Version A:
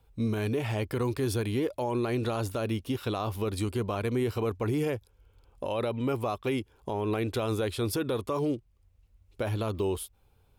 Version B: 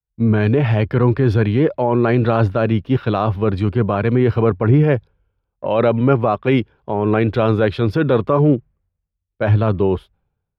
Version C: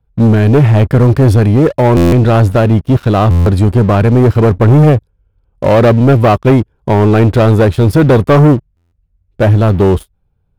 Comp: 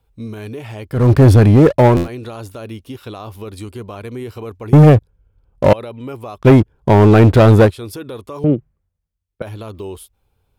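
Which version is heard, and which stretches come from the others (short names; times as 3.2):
A
1.02–1.97 from C, crossfade 0.24 s
4.73–5.73 from C
6.4–7.68 from C, crossfade 0.06 s
8.44–9.42 from B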